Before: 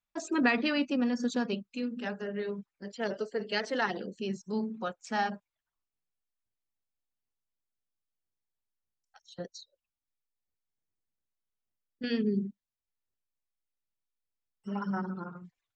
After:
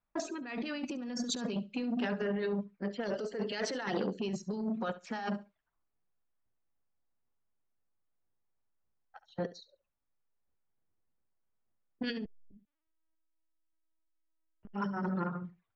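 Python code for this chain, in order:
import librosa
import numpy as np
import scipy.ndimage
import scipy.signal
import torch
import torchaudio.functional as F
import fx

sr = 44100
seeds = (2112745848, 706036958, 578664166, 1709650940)

y = fx.env_lowpass(x, sr, base_hz=1400.0, full_db=-27.0)
y = fx.over_compress(y, sr, threshold_db=-37.0, ratio=-1.0)
y = fx.echo_feedback(y, sr, ms=69, feedback_pct=15, wet_db=-17.0)
y = fx.lpc_vocoder(y, sr, seeds[0], excitation='pitch_kept', order=8, at=(12.25, 14.72))
y = fx.transformer_sat(y, sr, knee_hz=440.0)
y = y * 10.0 ** (2.5 / 20.0)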